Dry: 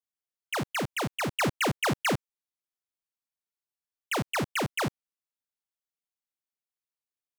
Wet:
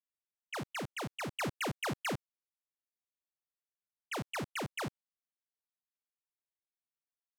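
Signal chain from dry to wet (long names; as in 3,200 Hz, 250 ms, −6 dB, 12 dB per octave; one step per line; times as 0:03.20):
low-pass that shuts in the quiet parts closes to 2,400 Hz, open at −29.5 dBFS
level −9 dB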